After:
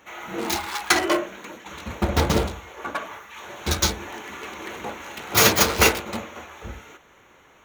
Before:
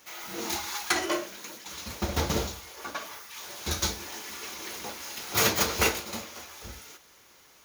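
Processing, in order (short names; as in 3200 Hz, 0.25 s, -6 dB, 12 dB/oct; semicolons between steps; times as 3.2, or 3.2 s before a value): Wiener smoothing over 9 samples; gain +8 dB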